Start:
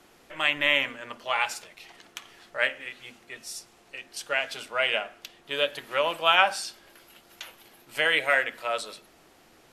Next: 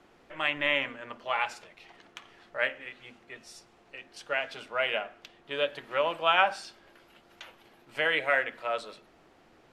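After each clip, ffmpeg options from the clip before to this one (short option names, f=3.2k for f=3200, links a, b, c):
-af "aemphasis=mode=reproduction:type=75fm,volume=-2dB"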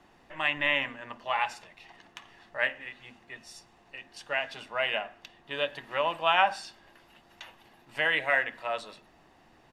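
-af "aecho=1:1:1.1:0.4"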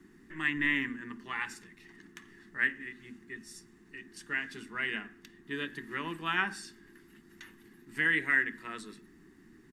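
-af "firequalizer=gain_entry='entry(130,0);entry(190,9);entry(390,6);entry(570,-26);entry(1100,-8);entry(1800,2);entry(2600,-10);entry(8000,3)':delay=0.05:min_phase=1"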